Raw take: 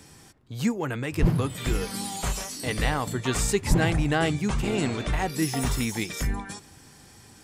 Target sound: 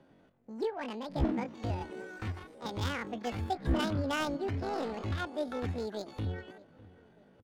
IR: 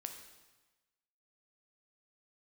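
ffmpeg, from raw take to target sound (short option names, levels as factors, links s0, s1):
-filter_complex "[0:a]asetrate=83250,aresample=44100,atempo=0.529732,adynamicsmooth=sensitivity=2:basefreq=2000,asplit=2[s0][s1];[s1]adelay=603,lowpass=f=2000:p=1,volume=0.0944,asplit=2[s2][s3];[s3]adelay=603,lowpass=f=2000:p=1,volume=0.46,asplit=2[s4][s5];[s5]adelay=603,lowpass=f=2000:p=1,volume=0.46[s6];[s0][s2][s4][s6]amix=inputs=4:normalize=0,volume=0.398"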